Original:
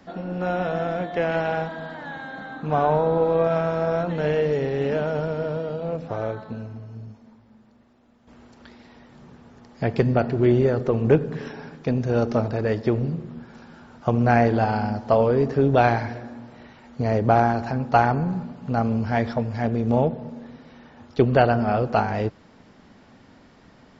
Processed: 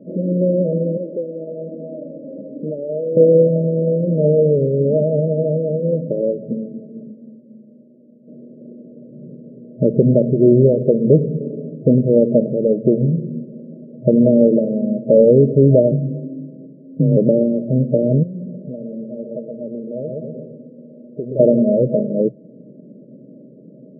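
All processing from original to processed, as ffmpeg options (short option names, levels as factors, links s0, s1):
-filter_complex "[0:a]asettb=1/sr,asplit=3[s0][s1][s2];[s0]atrim=end=0.974[s3];[s1]atrim=start=0.97:end=3.17,asetpts=PTS-STARTPTS,afade=t=in:d=0.004:c=qsin,afade=t=out:st=2.196:d=0.004:c=qsin,highpass=260,acompressor=threshold=0.0282:ratio=3:attack=3.2:release=140:knee=1:detection=peak,asoftclip=type=hard:threshold=0.0473[s4];[s2]atrim=start=3.166[s5];[s3][s4]acrossfade=d=0.004:c1=hsin:c2=qsin[s6];[s6][s5]acrossfade=d=0.004:c1=qsin:c2=hsin,asettb=1/sr,asplit=3[s7][s8][s9];[s7]atrim=end=15.914[s10];[s8]atrim=start=15.91:end=17.17,asetpts=PTS-STARTPTS,afade=t=in:d=0.004:c=qsin,afade=t=out:st=1.256:d=0.004:c=qsin,equalizer=f=1100:t=o:w=2.3:g=-12,afreqshift=28[s11];[s9]atrim=start=17.166[s12];[s10][s11]acrossfade=d=0.004:c1=hsin:c2=qsin[s13];[s13][s12]acrossfade=d=0.004:c1=qsin:c2=hsin,asettb=1/sr,asplit=3[s14][s15][s16];[s14]atrim=end=18.234[s17];[s15]atrim=start=18.23:end=21.4,asetpts=PTS-STARTPTS,afade=t=in:d=0.004:c=qsin,afade=t=out:st=3.166:d=0.004:c=qsin,asplit=2[s18][s19];[s19]adelay=121,lowpass=f=850:p=1,volume=0.596,asplit=2[s20][s21];[s21]adelay=121,lowpass=f=850:p=1,volume=0.4,asplit=2[s22][s23];[s23]adelay=121,lowpass=f=850:p=1,volume=0.4,asplit=2[s24][s25];[s25]adelay=121,lowpass=f=850:p=1,volume=0.4,asplit=2[s26][s27];[s27]adelay=121,lowpass=f=850:p=1,volume=0.4[s28];[s18][s20][s22][s24][s26][s28]amix=inputs=6:normalize=0,atrim=end_sample=139797,acompressor=threshold=0.0282:ratio=4:attack=3.2:release=140:knee=1:detection=peak,tiltshelf=f=710:g=-7.5[s29];[s16]atrim=start=21.396[s30];[s17][s29]acrossfade=d=0.004:c1=hsin:c2=qsin[s31];[s31][s30]acrossfade=d=0.004:c1=qsin:c2=hsin,afftfilt=real='re*between(b*sr/4096,120,640)':imag='im*between(b*sr/4096,120,640)':win_size=4096:overlap=0.75,adynamicequalizer=threshold=0.0251:dfrequency=330:dqfactor=0.95:tfrequency=330:tqfactor=0.95:attack=5:release=100:ratio=0.375:range=3:mode=cutabove:tftype=bell,alimiter=level_in=4.22:limit=0.891:release=50:level=0:latency=1,volume=0.891"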